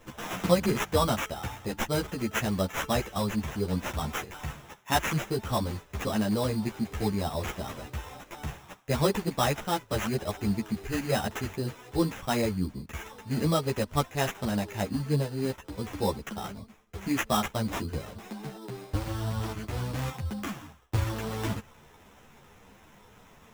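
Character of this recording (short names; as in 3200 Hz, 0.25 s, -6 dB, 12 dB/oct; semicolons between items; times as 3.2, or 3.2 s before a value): aliases and images of a low sample rate 4500 Hz, jitter 0%; a shimmering, thickened sound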